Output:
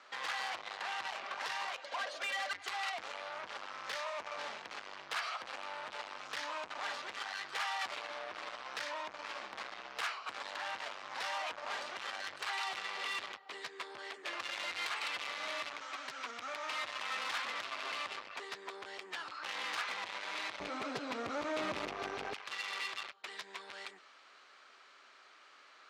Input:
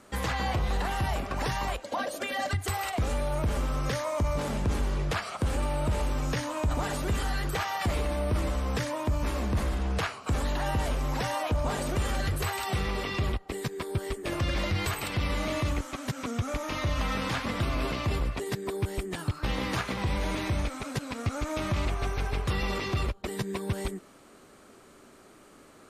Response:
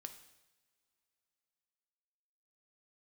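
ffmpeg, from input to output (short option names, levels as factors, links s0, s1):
-af "lowpass=f=5000:w=0.5412,lowpass=f=5000:w=1.3066,asoftclip=type=tanh:threshold=0.0237,asetnsamples=n=441:p=0,asendcmd='20.6 highpass f 340;22.34 highpass f 1300',highpass=1000,volume=1.26"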